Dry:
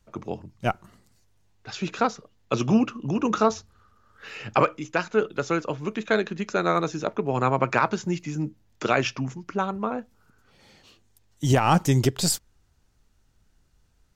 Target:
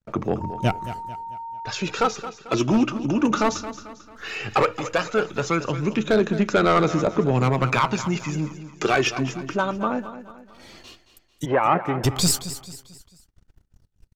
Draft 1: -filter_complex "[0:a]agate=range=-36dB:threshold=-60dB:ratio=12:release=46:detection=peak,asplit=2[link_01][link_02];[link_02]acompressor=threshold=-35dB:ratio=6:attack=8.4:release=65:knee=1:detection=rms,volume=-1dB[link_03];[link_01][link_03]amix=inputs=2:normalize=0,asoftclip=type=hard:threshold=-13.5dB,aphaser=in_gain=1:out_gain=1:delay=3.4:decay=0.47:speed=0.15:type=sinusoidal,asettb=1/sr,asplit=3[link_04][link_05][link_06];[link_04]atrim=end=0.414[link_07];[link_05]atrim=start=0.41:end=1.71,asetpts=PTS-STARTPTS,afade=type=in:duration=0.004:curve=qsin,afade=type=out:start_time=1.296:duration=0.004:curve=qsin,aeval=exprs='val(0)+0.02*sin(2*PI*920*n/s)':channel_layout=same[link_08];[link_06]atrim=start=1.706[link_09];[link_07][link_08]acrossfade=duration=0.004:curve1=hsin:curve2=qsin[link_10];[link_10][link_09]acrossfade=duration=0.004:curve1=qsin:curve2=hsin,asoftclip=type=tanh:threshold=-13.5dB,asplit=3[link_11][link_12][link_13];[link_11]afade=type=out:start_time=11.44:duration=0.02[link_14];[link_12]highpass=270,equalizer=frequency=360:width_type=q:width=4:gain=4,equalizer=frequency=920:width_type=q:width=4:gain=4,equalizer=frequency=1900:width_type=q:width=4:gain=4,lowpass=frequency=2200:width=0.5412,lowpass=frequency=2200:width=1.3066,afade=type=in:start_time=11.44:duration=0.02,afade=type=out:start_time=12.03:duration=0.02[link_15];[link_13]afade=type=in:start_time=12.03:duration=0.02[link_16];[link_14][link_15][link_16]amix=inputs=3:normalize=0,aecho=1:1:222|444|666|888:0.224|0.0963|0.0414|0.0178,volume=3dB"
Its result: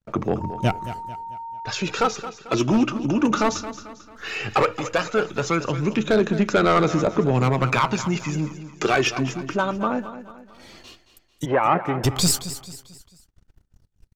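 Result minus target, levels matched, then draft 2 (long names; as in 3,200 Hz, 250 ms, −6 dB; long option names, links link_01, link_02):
downward compressor: peak gain reduction −6 dB
-filter_complex "[0:a]agate=range=-36dB:threshold=-60dB:ratio=12:release=46:detection=peak,asplit=2[link_01][link_02];[link_02]acompressor=threshold=-42dB:ratio=6:attack=8.4:release=65:knee=1:detection=rms,volume=-1dB[link_03];[link_01][link_03]amix=inputs=2:normalize=0,asoftclip=type=hard:threshold=-13.5dB,aphaser=in_gain=1:out_gain=1:delay=3.4:decay=0.47:speed=0.15:type=sinusoidal,asettb=1/sr,asplit=3[link_04][link_05][link_06];[link_04]atrim=end=0.414[link_07];[link_05]atrim=start=0.41:end=1.71,asetpts=PTS-STARTPTS,afade=type=in:duration=0.004:curve=qsin,afade=type=out:start_time=1.296:duration=0.004:curve=qsin,aeval=exprs='val(0)+0.02*sin(2*PI*920*n/s)':channel_layout=same[link_08];[link_06]atrim=start=1.706[link_09];[link_07][link_08]acrossfade=duration=0.004:curve1=hsin:curve2=qsin[link_10];[link_10][link_09]acrossfade=duration=0.004:curve1=qsin:curve2=hsin,asoftclip=type=tanh:threshold=-13.5dB,asplit=3[link_11][link_12][link_13];[link_11]afade=type=out:start_time=11.44:duration=0.02[link_14];[link_12]highpass=270,equalizer=frequency=360:width_type=q:width=4:gain=4,equalizer=frequency=920:width_type=q:width=4:gain=4,equalizer=frequency=1900:width_type=q:width=4:gain=4,lowpass=frequency=2200:width=0.5412,lowpass=frequency=2200:width=1.3066,afade=type=in:start_time=11.44:duration=0.02,afade=type=out:start_time=12.03:duration=0.02[link_15];[link_13]afade=type=in:start_time=12.03:duration=0.02[link_16];[link_14][link_15][link_16]amix=inputs=3:normalize=0,aecho=1:1:222|444|666|888:0.224|0.0963|0.0414|0.0178,volume=3dB"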